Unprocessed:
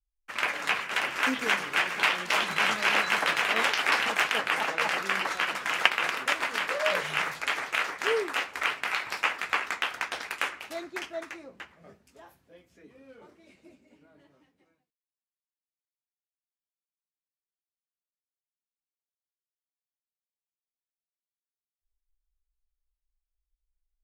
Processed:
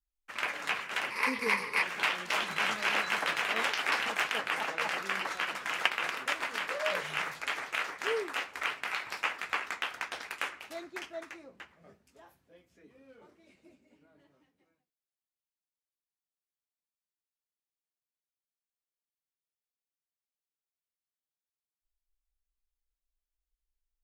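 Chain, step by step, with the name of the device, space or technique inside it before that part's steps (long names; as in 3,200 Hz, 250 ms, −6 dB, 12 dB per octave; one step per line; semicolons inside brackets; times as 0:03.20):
0:01.10–0:01.83: EQ curve with evenly spaced ripples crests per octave 0.89, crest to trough 13 dB
parallel distortion (in parallel at −8 dB: hard clipping −14 dBFS, distortion −19 dB)
on the sum: level −8 dB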